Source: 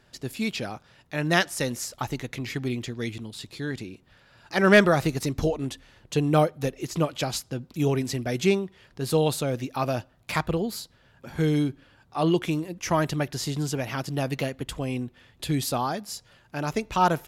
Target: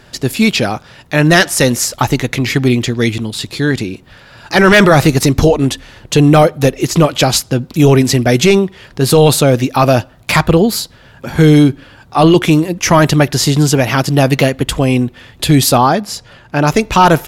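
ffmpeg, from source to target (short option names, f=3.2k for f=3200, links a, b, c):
-filter_complex "[0:a]asettb=1/sr,asplit=3[a][b][c];[a]atrim=end=15.774[d];[b]atrim=start=15.77:end=16.67,asetpts=PTS-STARTPTS,afade=t=in:d=0.004:c=qsin,afade=t=out:st=0.896:d=0.004:c=qsin,aemphasis=mode=reproduction:type=cd[e];[c]atrim=start=16.666[f];[d][e]acrossfade=d=0.004:c1=hsin:c2=qsin[g];[g][f]acrossfade=d=0.004:c1=qsin:c2=hsin,apsyclip=19.5dB,volume=-2dB"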